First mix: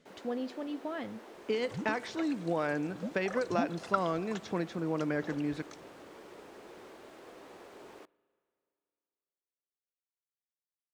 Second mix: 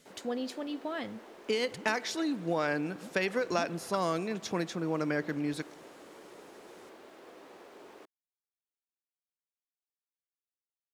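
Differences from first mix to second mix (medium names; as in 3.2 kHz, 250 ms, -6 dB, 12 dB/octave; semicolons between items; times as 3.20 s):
speech: remove tape spacing loss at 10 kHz 20 dB; first sound: send off; second sound -9.5 dB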